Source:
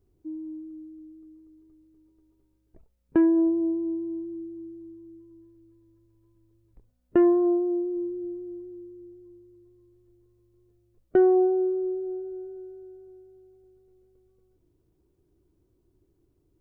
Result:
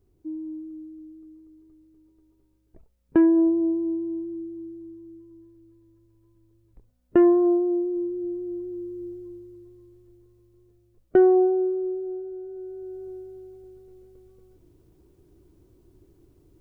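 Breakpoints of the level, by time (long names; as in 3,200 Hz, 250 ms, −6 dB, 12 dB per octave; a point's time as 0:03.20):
0:08.09 +2.5 dB
0:09.07 +10.5 dB
0:11.76 +0.5 dB
0:12.41 +0.5 dB
0:13.06 +11 dB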